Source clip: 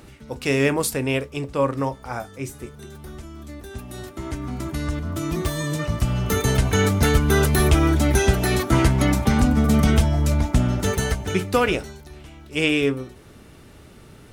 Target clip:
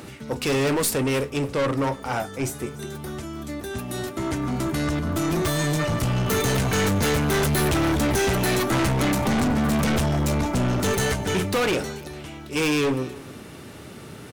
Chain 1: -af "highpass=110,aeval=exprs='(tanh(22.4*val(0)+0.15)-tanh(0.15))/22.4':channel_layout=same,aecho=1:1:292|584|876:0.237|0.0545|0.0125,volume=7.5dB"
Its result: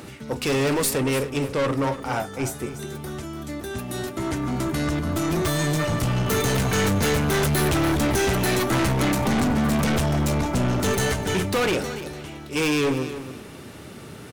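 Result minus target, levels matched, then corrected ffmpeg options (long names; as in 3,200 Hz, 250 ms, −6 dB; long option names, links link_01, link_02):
echo-to-direct +8.5 dB
-af "highpass=110,aeval=exprs='(tanh(22.4*val(0)+0.15)-tanh(0.15))/22.4':channel_layout=same,aecho=1:1:292|584:0.0891|0.0205,volume=7.5dB"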